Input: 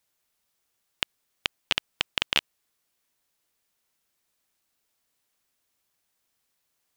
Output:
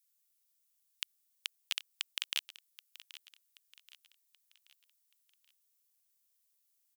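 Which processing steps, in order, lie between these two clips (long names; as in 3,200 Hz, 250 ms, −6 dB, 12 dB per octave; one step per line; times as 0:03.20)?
first difference
repeating echo 779 ms, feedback 44%, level −17 dB
level −3 dB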